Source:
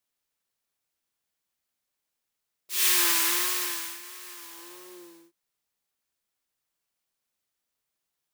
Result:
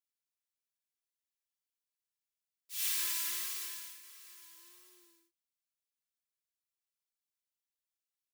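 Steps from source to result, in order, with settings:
guitar amp tone stack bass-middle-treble 5-5-5
comb filter 3 ms, depth 75%
level −7 dB

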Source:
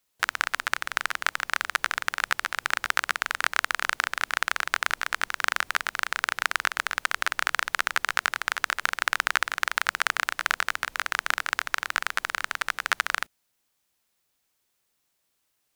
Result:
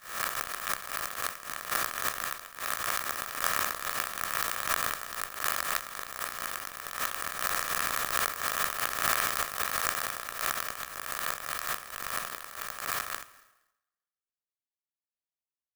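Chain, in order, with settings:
peak hold with a rise ahead of every peak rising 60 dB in 1.47 s
downward expander −15 dBFS
comb filter 1.7 ms, depth 68%
dense smooth reverb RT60 1 s, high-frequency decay 0.85×, pre-delay 90 ms, DRR 19 dB
dynamic equaliser 1,800 Hz, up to −4 dB, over −41 dBFS, Q 1.4
in parallel at −10 dB: wave folding −22 dBFS
on the sum: sample-and-hold tremolo
converter with an unsteady clock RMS 0.072 ms

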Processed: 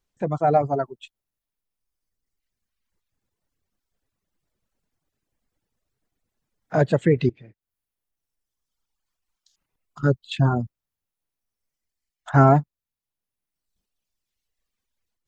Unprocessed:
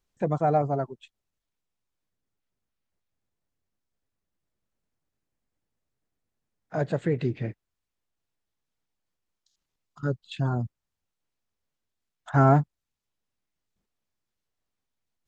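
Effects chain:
0:07.29–0:10.04: downward compressor 4 to 1, threshold −42 dBFS, peak gain reduction 13.5 dB
reverb reduction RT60 1.9 s
automatic gain control gain up to 8.5 dB

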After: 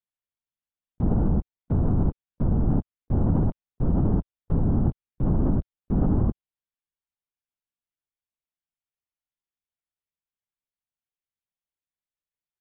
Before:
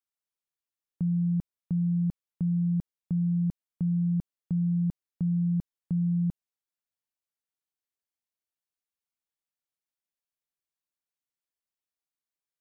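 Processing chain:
low-shelf EQ 170 Hz +7 dB
leveller curve on the samples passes 2
linear-prediction vocoder at 8 kHz whisper

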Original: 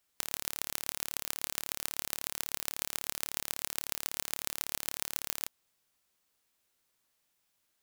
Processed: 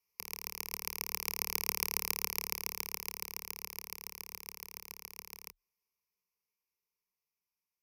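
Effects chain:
source passing by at 0:01.83, 7 m/s, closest 4.3 metres
EQ curve with evenly spaced ripples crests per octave 0.82, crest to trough 17 dB
gate on every frequency bin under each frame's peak −25 dB strong

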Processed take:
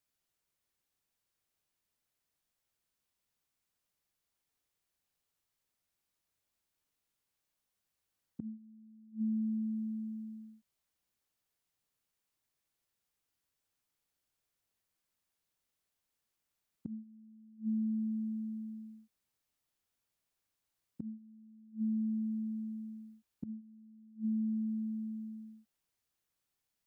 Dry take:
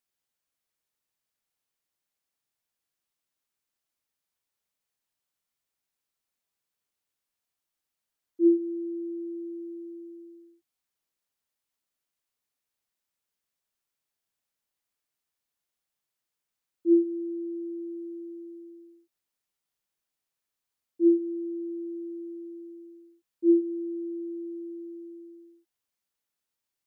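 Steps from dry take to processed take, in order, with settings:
parametric band 210 Hz +5 dB 1.7 octaves
gate with flip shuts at −28 dBFS, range −27 dB
frequency shifter −120 Hz

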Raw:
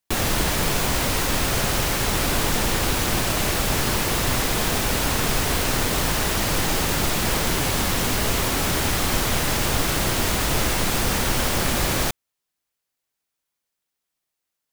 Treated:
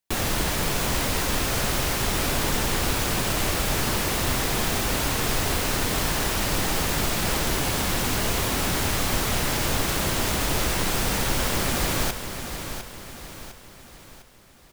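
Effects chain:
repeating echo 704 ms, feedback 46%, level −9 dB
level −3 dB

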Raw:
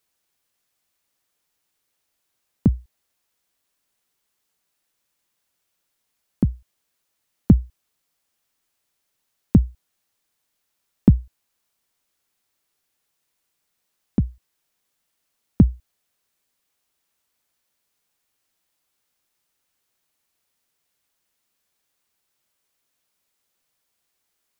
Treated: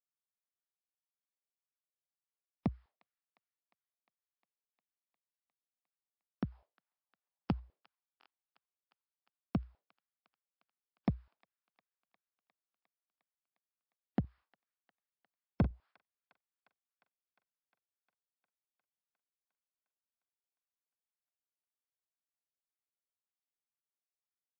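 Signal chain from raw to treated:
in parallel at +2.5 dB: brickwall limiter −13 dBFS, peak gain reduction 11 dB
on the sum: LFO wah 1.9 Hz 470–1,400 Hz, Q 2
0:06.52–0:07.60: drawn EQ curve 240 Hz 0 dB, 820 Hz +13 dB, 1,400 Hz +5 dB
downward expander −52 dBFS
soft clipping −24.5 dBFS, distortion −6 dB
0:14.20–0:15.71: double-tracking delay 43 ms −12 dB
on a send: delay with a high-pass on its return 355 ms, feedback 74%, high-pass 1,500 Hz, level −20 dB
on the sum: buffer that repeats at 0:08.19, samples 1,024, times 2
level +2.5 dB
MP3 56 kbit/s 12,000 Hz

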